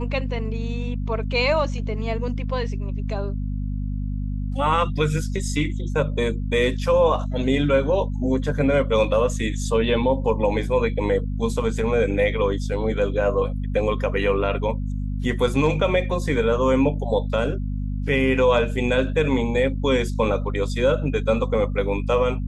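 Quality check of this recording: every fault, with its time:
mains hum 50 Hz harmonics 5 −26 dBFS

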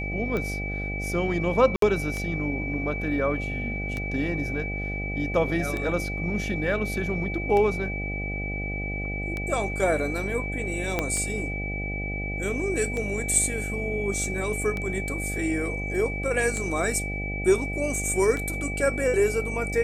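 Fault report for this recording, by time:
mains buzz 50 Hz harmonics 16 −32 dBFS
scratch tick 33 1/3 rpm −17 dBFS
whistle 2,300 Hz −32 dBFS
0:01.76–0:01.82: drop-out 63 ms
0:10.99: click −10 dBFS

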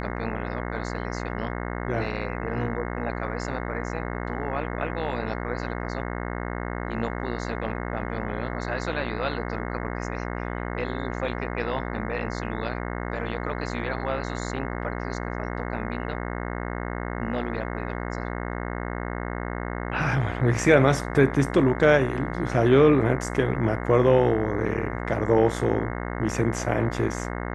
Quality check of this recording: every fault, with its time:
mains buzz 60 Hz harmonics 36 −31 dBFS

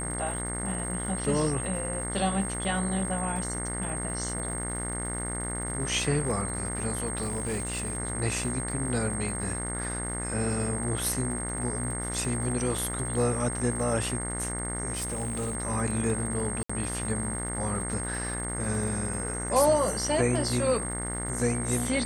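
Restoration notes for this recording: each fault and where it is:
mains buzz 60 Hz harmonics 36 −35 dBFS
surface crackle 190 per second −39 dBFS
whistle 8,500 Hz −34 dBFS
0:07.21–0:07.97: clipping −26.5 dBFS
0:14.93–0:15.55: clipping −27.5 dBFS
0:16.63–0:16.70: drop-out 65 ms

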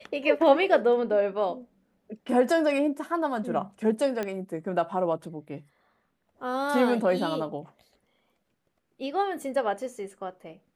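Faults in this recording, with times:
0:04.23: click −17 dBFS

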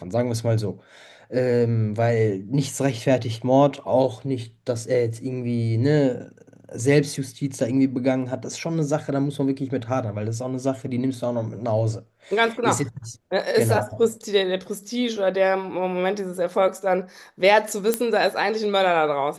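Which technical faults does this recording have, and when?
0:17.94: click −6 dBFS

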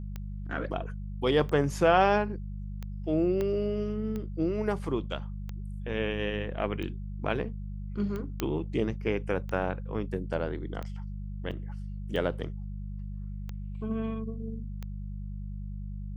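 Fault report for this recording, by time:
mains hum 50 Hz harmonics 4 −37 dBFS
scratch tick 45 rpm −24 dBFS
0:03.41: click −19 dBFS
0:08.40: click −14 dBFS
0:11.51–0:11.52: drop-out 6.2 ms

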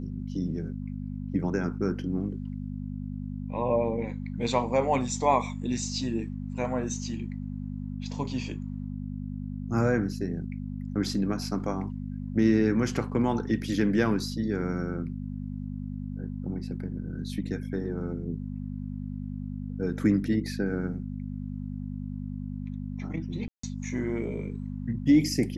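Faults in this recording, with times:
mains hum 50 Hz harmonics 5 −35 dBFS
0:23.48–0:23.63: drop-out 154 ms

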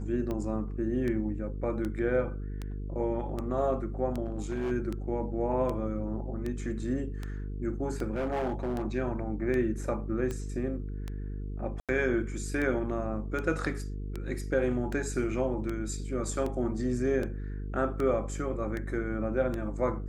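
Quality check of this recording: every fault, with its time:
mains buzz 50 Hz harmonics 9 −36 dBFS
scratch tick 78 rpm −22 dBFS
0:04.24–0:04.72: clipping −27.5 dBFS
0:08.14–0:08.82: clipping −27 dBFS
0:11.80–0:11.89: drop-out 87 ms

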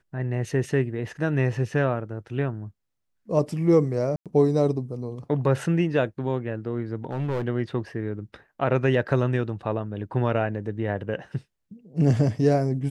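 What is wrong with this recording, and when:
0:04.16–0:04.26: drop-out 97 ms
0:07.05–0:07.48: clipping −23 dBFS

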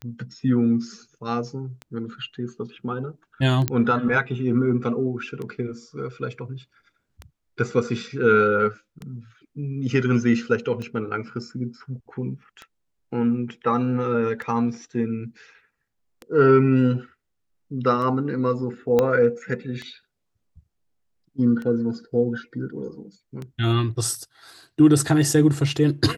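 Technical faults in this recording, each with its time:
scratch tick 33 1/3 rpm −21 dBFS
0:03.68: click −7 dBFS
0:18.99: click −8 dBFS

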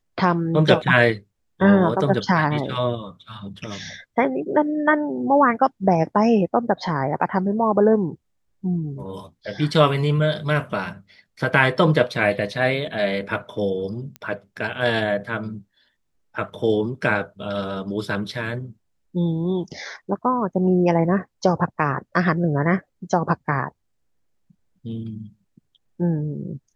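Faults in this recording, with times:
0:14.16: click −20 dBFS

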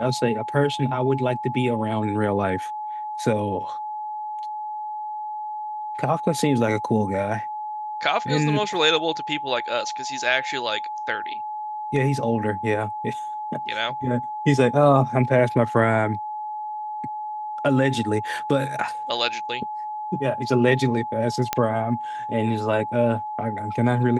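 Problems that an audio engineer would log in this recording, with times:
whistle 850 Hz −28 dBFS
0:21.53: click −5 dBFS

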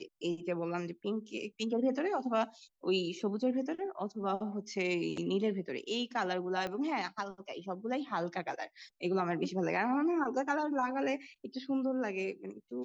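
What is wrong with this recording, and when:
0:06.67: click −24 dBFS

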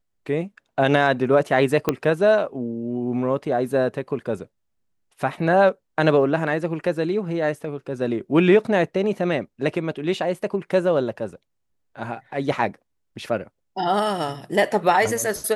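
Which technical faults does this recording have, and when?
0:01.89: click −6 dBFS

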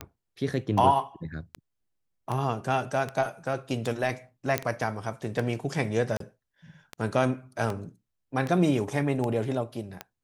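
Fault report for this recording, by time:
scratch tick 78 rpm −18 dBFS
0:04.58: click −9 dBFS
0:06.17–0:06.20: drop-out 33 ms

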